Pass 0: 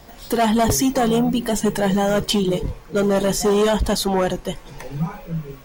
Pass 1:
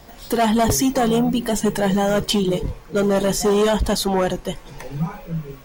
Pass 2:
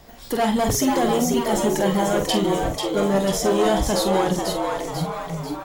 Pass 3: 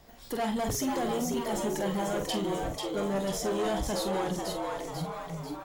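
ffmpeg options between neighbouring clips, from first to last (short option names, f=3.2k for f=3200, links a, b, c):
-af anull
-filter_complex "[0:a]asplit=2[a][b];[b]adelay=46,volume=-7.5dB[c];[a][c]amix=inputs=2:normalize=0,asplit=7[d][e][f][g][h][i][j];[e]adelay=492,afreqshift=130,volume=-4.5dB[k];[f]adelay=984,afreqshift=260,volume=-10.5dB[l];[g]adelay=1476,afreqshift=390,volume=-16.5dB[m];[h]adelay=1968,afreqshift=520,volume=-22.6dB[n];[i]adelay=2460,afreqshift=650,volume=-28.6dB[o];[j]adelay=2952,afreqshift=780,volume=-34.6dB[p];[d][k][l][m][n][o][p]amix=inputs=7:normalize=0,volume=-3.5dB"
-af "asoftclip=type=tanh:threshold=-14.5dB,volume=-8.5dB"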